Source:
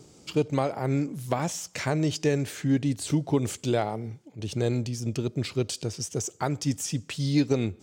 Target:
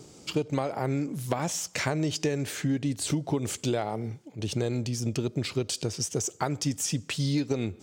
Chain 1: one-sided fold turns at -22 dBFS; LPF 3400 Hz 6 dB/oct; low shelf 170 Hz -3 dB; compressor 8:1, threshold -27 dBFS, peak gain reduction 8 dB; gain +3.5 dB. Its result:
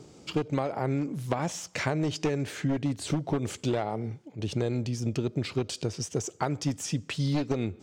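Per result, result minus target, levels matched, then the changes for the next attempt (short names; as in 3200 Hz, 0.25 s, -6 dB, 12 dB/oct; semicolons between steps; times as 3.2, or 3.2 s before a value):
one-sided fold: distortion +31 dB; 4000 Hz band -2.5 dB
change: one-sided fold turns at -15 dBFS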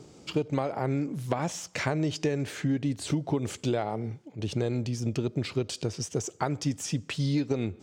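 4000 Hz band -3.0 dB
remove: LPF 3400 Hz 6 dB/oct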